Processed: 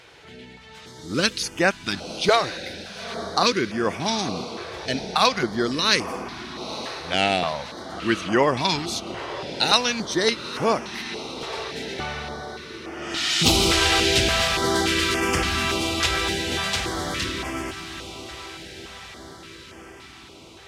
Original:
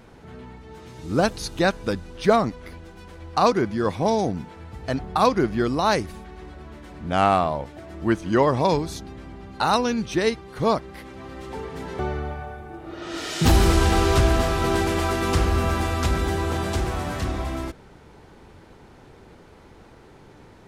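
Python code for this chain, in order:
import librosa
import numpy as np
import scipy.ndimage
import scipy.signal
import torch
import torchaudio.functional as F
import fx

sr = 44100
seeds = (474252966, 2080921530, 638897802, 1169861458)

y = fx.weighting(x, sr, curve='D')
y = fx.echo_diffused(y, sr, ms=900, feedback_pct=60, wet_db=-12.0)
y = fx.filter_held_notch(y, sr, hz=3.5, low_hz=220.0, high_hz=3900.0)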